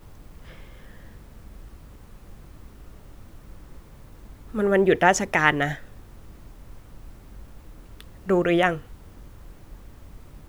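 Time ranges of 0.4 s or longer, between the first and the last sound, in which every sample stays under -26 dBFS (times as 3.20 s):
5.74–8.00 s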